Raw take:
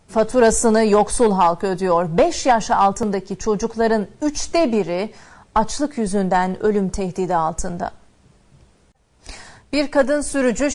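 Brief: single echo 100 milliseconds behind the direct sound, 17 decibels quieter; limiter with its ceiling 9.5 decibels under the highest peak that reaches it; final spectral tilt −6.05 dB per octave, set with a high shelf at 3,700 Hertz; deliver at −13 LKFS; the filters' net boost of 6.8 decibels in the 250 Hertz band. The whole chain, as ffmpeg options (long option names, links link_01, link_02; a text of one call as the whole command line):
ffmpeg -i in.wav -af "equalizer=frequency=250:width_type=o:gain=8.5,highshelf=frequency=3700:gain=-4.5,alimiter=limit=-11dB:level=0:latency=1,aecho=1:1:100:0.141,volume=7dB" out.wav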